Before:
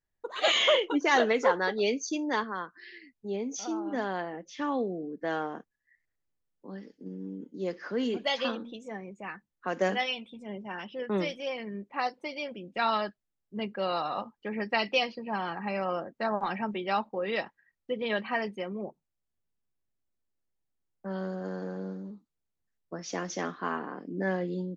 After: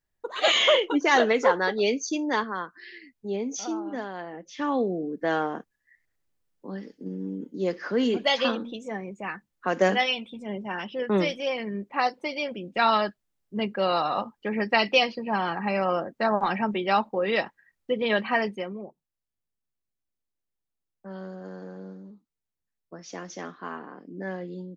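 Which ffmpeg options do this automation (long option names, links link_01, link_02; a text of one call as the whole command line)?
ffmpeg -i in.wav -af "volume=14dB,afade=type=out:start_time=3.63:duration=0.49:silence=0.398107,afade=type=in:start_time=4.12:duration=0.82:silence=0.298538,afade=type=out:start_time=18.42:duration=0.45:silence=0.316228" out.wav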